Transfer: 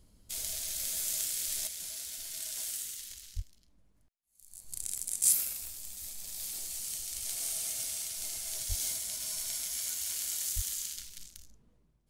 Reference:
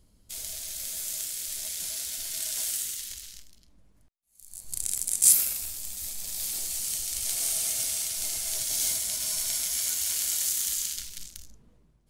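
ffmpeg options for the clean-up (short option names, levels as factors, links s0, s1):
-filter_complex "[0:a]adeclick=t=4,asplit=3[s0][s1][s2];[s0]afade=t=out:st=3.35:d=0.02[s3];[s1]highpass=f=140:w=0.5412,highpass=f=140:w=1.3066,afade=t=in:st=3.35:d=0.02,afade=t=out:st=3.47:d=0.02[s4];[s2]afade=t=in:st=3.47:d=0.02[s5];[s3][s4][s5]amix=inputs=3:normalize=0,asplit=3[s6][s7][s8];[s6]afade=t=out:st=8.68:d=0.02[s9];[s7]highpass=f=140:w=0.5412,highpass=f=140:w=1.3066,afade=t=in:st=8.68:d=0.02,afade=t=out:st=8.8:d=0.02[s10];[s8]afade=t=in:st=8.8:d=0.02[s11];[s9][s10][s11]amix=inputs=3:normalize=0,asplit=3[s12][s13][s14];[s12]afade=t=out:st=10.55:d=0.02[s15];[s13]highpass=f=140:w=0.5412,highpass=f=140:w=1.3066,afade=t=in:st=10.55:d=0.02,afade=t=out:st=10.67:d=0.02[s16];[s14]afade=t=in:st=10.67:d=0.02[s17];[s15][s16][s17]amix=inputs=3:normalize=0,asetnsamples=n=441:p=0,asendcmd='1.67 volume volume 7dB',volume=1"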